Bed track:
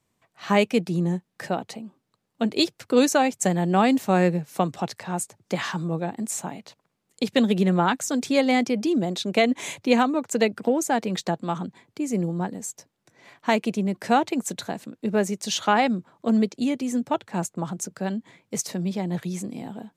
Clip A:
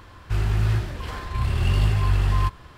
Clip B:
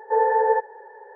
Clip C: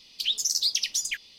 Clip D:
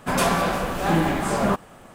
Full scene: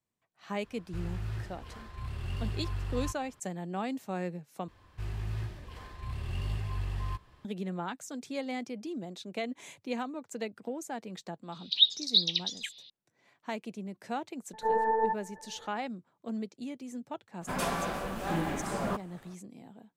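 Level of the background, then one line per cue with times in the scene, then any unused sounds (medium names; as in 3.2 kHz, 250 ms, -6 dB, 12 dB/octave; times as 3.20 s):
bed track -15.5 dB
0.63 s: add A -15 dB
4.68 s: replace with A -14 dB + band-stop 1.4 kHz, Q 9.1
11.52 s: add C -13 dB + resonant low-pass 3.8 kHz, resonance Q 12
14.53 s: add B -8 dB + LPC vocoder at 8 kHz pitch kept
17.41 s: add D -11 dB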